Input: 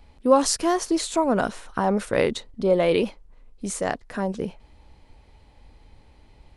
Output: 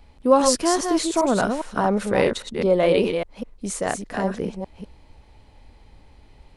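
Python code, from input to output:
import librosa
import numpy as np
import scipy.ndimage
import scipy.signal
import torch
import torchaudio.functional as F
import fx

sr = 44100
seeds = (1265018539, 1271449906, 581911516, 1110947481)

y = fx.reverse_delay(x, sr, ms=202, wet_db=-5.0)
y = y * librosa.db_to_amplitude(1.0)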